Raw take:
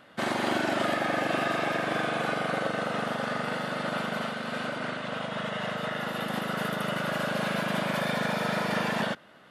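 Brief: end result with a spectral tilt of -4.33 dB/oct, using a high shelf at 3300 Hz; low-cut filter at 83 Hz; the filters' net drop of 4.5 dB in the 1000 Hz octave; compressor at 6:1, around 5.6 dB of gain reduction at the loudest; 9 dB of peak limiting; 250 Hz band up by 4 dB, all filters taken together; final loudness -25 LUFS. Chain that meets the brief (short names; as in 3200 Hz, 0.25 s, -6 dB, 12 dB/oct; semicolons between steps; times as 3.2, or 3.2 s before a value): HPF 83 Hz; bell 250 Hz +5.5 dB; bell 1000 Hz -7.5 dB; high shelf 3300 Hz +5.5 dB; compressor 6:1, threshold -29 dBFS; gain +13 dB; limiter -16 dBFS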